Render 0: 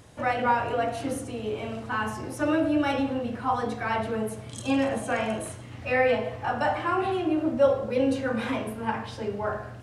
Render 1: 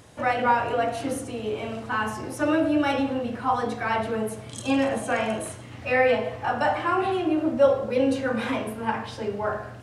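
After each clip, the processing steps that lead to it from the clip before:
low-shelf EQ 140 Hz −5 dB
level +2.5 dB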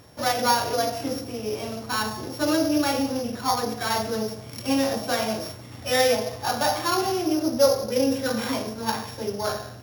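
samples sorted by size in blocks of 8 samples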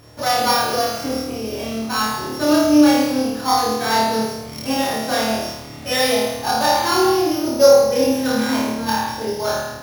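flutter between parallel walls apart 4.6 metres, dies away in 0.92 s
level +1.5 dB

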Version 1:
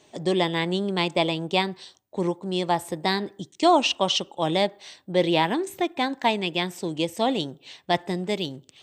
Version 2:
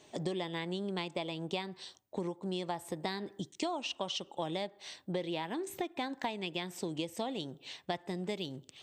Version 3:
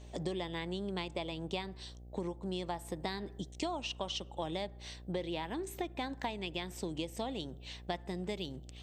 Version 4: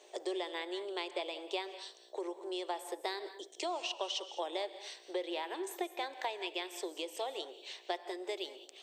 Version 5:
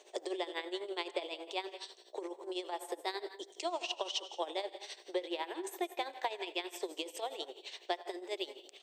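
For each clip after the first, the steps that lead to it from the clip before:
downward compressor 12 to 1, threshold −30 dBFS, peak gain reduction 17.5 dB; level −2.5 dB
hum with harmonics 60 Hz, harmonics 13, −49 dBFS −8 dB per octave; level −1.5 dB
Chebyshev high-pass filter 360 Hz, order 5; reverb whose tail is shaped and stops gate 230 ms rising, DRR 11.5 dB; level +1.5 dB
repeating echo 107 ms, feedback 50%, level −20 dB; amplitude tremolo 12 Hz, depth 75%; level +3 dB

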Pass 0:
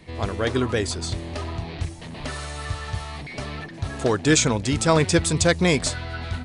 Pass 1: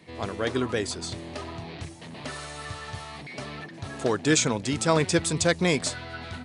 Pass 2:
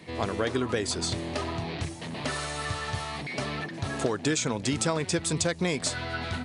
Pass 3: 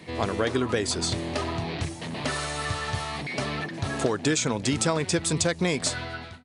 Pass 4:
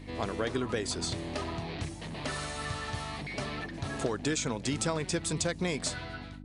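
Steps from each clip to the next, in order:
high-pass filter 130 Hz 12 dB per octave; level −3.5 dB
downward compressor 12 to 1, threshold −28 dBFS, peak gain reduction 13 dB; level +5 dB
fade-out on the ending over 0.56 s; level +2.5 dB
hum with harmonics 50 Hz, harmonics 6, −40 dBFS −2 dB per octave; level −6.5 dB

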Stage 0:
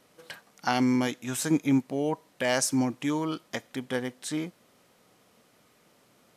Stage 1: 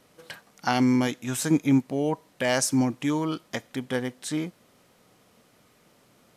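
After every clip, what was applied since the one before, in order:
low-shelf EQ 130 Hz +6.5 dB
level +1.5 dB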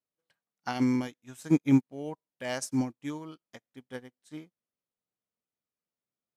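expander for the loud parts 2.5 to 1, over −42 dBFS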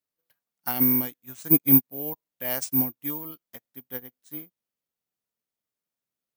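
bad sample-rate conversion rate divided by 3×, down none, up zero stuff

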